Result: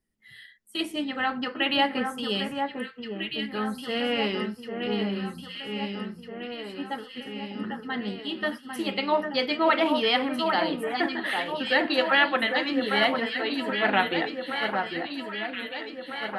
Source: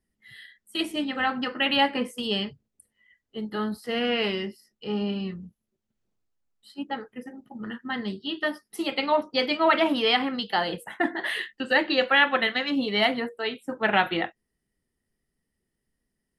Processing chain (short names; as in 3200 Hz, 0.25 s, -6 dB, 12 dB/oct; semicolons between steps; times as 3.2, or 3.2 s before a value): notches 60/120/180 Hz; on a send: echo with dull and thin repeats by turns 0.8 s, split 1800 Hz, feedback 76%, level -4.5 dB; on the sum: gain -1.5 dB